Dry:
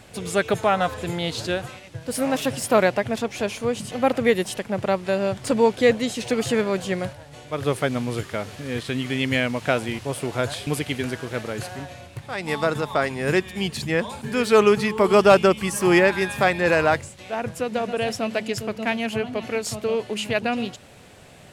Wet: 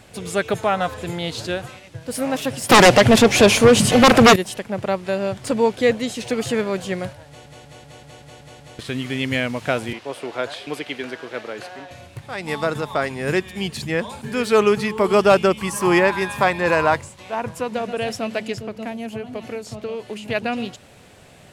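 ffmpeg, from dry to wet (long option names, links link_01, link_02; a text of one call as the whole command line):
ffmpeg -i in.wav -filter_complex "[0:a]asettb=1/sr,asplit=3[link_01][link_02][link_03];[link_01]atrim=end=2.694[link_04];[link_02]atrim=start=2.69:end=4.36,asetpts=PTS-STARTPTS,afade=type=in:duration=0.004:curve=qsin,afade=type=out:start_time=1.666:duration=0.004:curve=qsin,aeval=exprs='0.531*sin(PI/2*4.47*val(0)/0.531)':channel_layout=same[link_05];[link_03]atrim=start=4.356[link_06];[link_04][link_05]acrossfade=duration=0.004:curve1=hsin:curve2=qsin[link_07];[link_07][link_06]acrossfade=duration=0.004:curve1=qsin:curve2=hsin,asettb=1/sr,asplit=3[link_08][link_09][link_10];[link_08]atrim=end=9.934[link_11];[link_09]atrim=start=9.93:end=11.91,asetpts=PTS-STARTPTS,afade=type=in:duration=0.004:curve=qsin,afade=type=out:start_time=1.976:duration=0.004:curve=qsin,acrossover=split=260 5200:gain=0.126 1 0.251[link_12][link_13][link_14];[link_12][link_13][link_14]amix=inputs=3:normalize=0[link_15];[link_10]atrim=start=11.906[link_16];[link_11][link_15]acrossfade=duration=0.004:curve1=hsin:curve2=qsin[link_17];[link_17][link_16]acrossfade=duration=0.004:curve1=qsin:curve2=hsin,asettb=1/sr,asplit=3[link_18][link_19][link_20];[link_18]atrim=end=15.584[link_21];[link_19]atrim=start=15.58:end=17.75,asetpts=PTS-STARTPTS,afade=type=in:duration=0.004:curve=qsin,afade=type=out:start_time=2.166:duration=0.004:curve=qsin,equalizer=frequency=1000:width_type=o:width=0.34:gain=10.5[link_22];[link_20]atrim=start=17.746[link_23];[link_21][link_22]acrossfade=duration=0.004:curve1=hsin:curve2=qsin[link_24];[link_24][link_23]acrossfade=duration=0.004:curve1=qsin:curve2=hsin,asettb=1/sr,asplit=3[link_25][link_26][link_27];[link_25]atrim=end=18.544[link_28];[link_26]atrim=start=18.54:end=20.28,asetpts=PTS-STARTPTS,afade=type=in:duration=0.004:curve=qsin,afade=type=out:start_time=1.736:duration=0.004:curve=qsin,acrossover=split=880|6400[link_29][link_30][link_31];[link_29]acompressor=threshold=-27dB:ratio=4[link_32];[link_30]acompressor=threshold=-40dB:ratio=4[link_33];[link_31]acompressor=threshold=-52dB:ratio=4[link_34];[link_32][link_33][link_34]amix=inputs=3:normalize=0[link_35];[link_27]atrim=start=20.276[link_36];[link_28][link_35]acrossfade=duration=0.004:curve1=hsin:curve2=qsin[link_37];[link_37][link_36]acrossfade=duration=0.004:curve1=qsin:curve2=hsin,asplit=9[link_38][link_39][link_40][link_41][link_42][link_43][link_44][link_45][link_46];[link_38]atrim=end=7.462[link_47];[link_39]atrim=start=7.268:end=7.462[link_48];[link_40]atrim=start=7.268:end=7.462[link_49];[link_41]atrim=start=7.268:end=7.462[link_50];[link_42]atrim=start=7.268:end=7.462[link_51];[link_43]atrim=start=7.268:end=7.462[link_52];[link_44]atrim=start=7.268:end=7.462[link_53];[link_45]atrim=start=7.268:end=7.462[link_54];[link_46]atrim=start=8.788[link_55];[link_47][link_48]acrossfade=duration=0.004:curve1=hsin:curve2=hsin[link_56];[link_56][link_49]acrossfade=duration=0.004:curve1=hsin:curve2=hsin[link_57];[link_57][link_50]acrossfade=duration=0.004:curve1=hsin:curve2=hsin[link_58];[link_58][link_51]acrossfade=duration=0.004:curve1=hsin:curve2=hsin[link_59];[link_59][link_52]acrossfade=duration=0.004:curve1=hsin:curve2=hsin[link_60];[link_60][link_53]acrossfade=duration=0.004:curve1=hsin:curve2=hsin[link_61];[link_61][link_54]acrossfade=duration=0.004:curve1=hsin:curve2=hsin[link_62];[link_62][link_55]acrossfade=duration=0.004:curve1=hsin:curve2=hsin" out.wav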